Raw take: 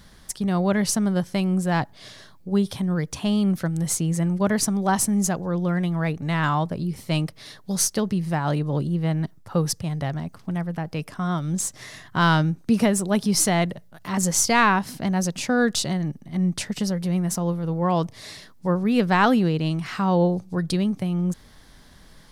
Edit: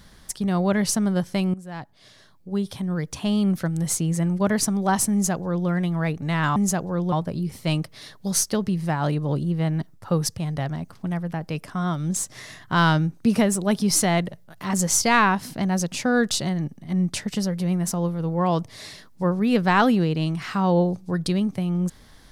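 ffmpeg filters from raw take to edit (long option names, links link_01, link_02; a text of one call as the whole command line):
ffmpeg -i in.wav -filter_complex "[0:a]asplit=4[link_01][link_02][link_03][link_04];[link_01]atrim=end=1.54,asetpts=PTS-STARTPTS,afade=type=out:start_time=1.536:duration=0.004:curve=hsin:silence=0.133352[link_05];[link_02]atrim=start=1.54:end=6.562,asetpts=PTS-STARTPTS,afade=type=in:duration=1.88:silence=0.133352[link_06];[link_03]atrim=start=5.118:end=5.682[link_07];[link_04]atrim=start=6.558[link_08];[link_05][link_06]concat=n=2:v=0:a=1[link_09];[link_09][link_07]acrossfade=duration=0.004:curve1=hsin:curve2=hsin[link_10];[link_10][link_08]acrossfade=duration=0.004:curve1=hsin:curve2=hsin" out.wav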